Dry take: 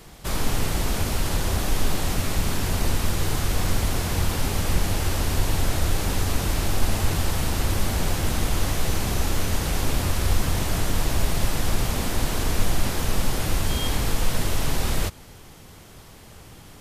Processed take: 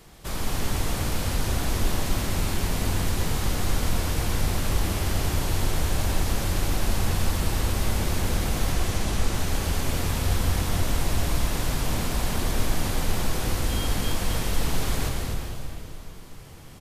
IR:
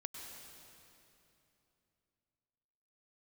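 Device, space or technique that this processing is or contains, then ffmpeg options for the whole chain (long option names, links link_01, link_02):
cave: -filter_complex "[0:a]asettb=1/sr,asplit=3[link_01][link_02][link_03];[link_01]atrim=end=8.724[link_04];[link_02]atrim=start=8.72:end=9.34,asetpts=PTS-STARTPTS,afade=type=in:duration=0.004:curve=qsin,afade=type=out:start_time=0.616:duration=0.004:curve=qsin,lowpass=11000[link_05];[link_03]atrim=start=9.336[link_06];[link_04][link_05]acrossfade=duration=0.004:curve1=hsin:curve2=qsin[link_07];[link_07][link_06]acrossfade=duration=0.004:curve1=qsin:curve2=hsin,aecho=1:1:252:0.355[link_08];[1:a]atrim=start_sample=2205[link_09];[link_08][link_09]afir=irnorm=-1:irlink=0"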